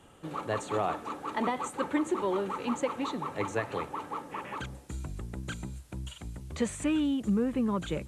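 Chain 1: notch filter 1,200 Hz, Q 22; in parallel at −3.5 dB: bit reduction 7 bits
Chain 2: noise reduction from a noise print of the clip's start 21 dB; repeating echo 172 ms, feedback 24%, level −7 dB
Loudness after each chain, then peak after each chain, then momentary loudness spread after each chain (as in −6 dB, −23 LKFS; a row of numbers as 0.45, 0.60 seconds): −28.5, −32.5 LKFS; −11.5, −15.0 dBFS; 12, 13 LU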